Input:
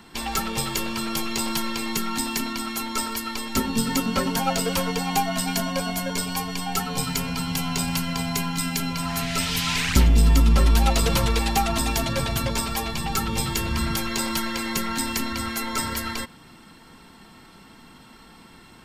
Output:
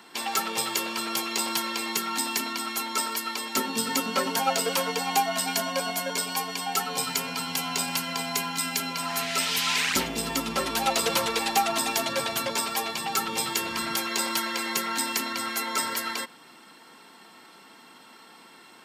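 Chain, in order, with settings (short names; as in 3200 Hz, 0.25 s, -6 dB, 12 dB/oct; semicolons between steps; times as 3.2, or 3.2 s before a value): HPF 360 Hz 12 dB/oct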